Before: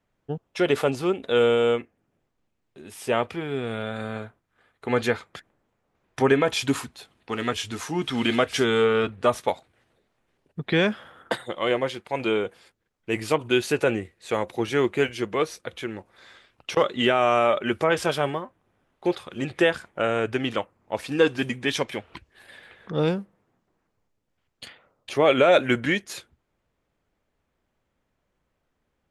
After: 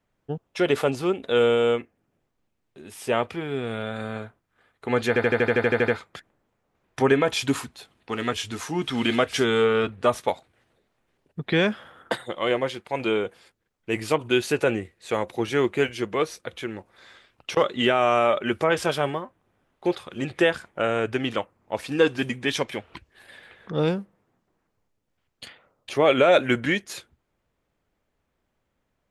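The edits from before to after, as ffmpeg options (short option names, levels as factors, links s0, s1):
-filter_complex "[0:a]asplit=11[s0][s1][s2][s3][s4][s5][s6][s7][s8][s9][s10];[s0]atrim=end=5.162[s11];[s1]atrim=start=5.078:end=5.162[s12];[s2]atrim=start=5.078:end=5.162[s13];[s3]atrim=start=5.078:end=5.162[s14];[s4]atrim=start=5.078:end=5.162[s15];[s5]atrim=start=5.078:end=5.162[s16];[s6]atrim=start=5.078:end=5.162[s17];[s7]atrim=start=5.078:end=5.162[s18];[s8]atrim=start=5.078:end=5.162[s19];[s9]atrim=start=5.078:end=5.162[s20];[s10]atrim=start=5.078[s21];[s11][s12]acrossfade=d=0.004:c1=hsin:c2=hsin[s22];[s22][s13]acrossfade=d=0.004:c1=hsin:c2=hsin[s23];[s23][s14]acrossfade=d=0.004:c1=hsin:c2=hsin[s24];[s24][s15]acrossfade=d=0.004:c1=hsin:c2=hsin[s25];[s25][s16]acrossfade=d=0.004:c1=hsin:c2=hsin[s26];[s26][s17]acrossfade=d=0.004:c1=hsin:c2=hsin[s27];[s27][s18]acrossfade=d=0.004:c1=hsin:c2=hsin[s28];[s28][s19]acrossfade=d=0.004:c1=hsin:c2=hsin[s29];[s29][s20]acrossfade=d=0.004:c1=hsin:c2=hsin[s30];[s30][s21]acrossfade=d=0.004:c1=hsin:c2=hsin"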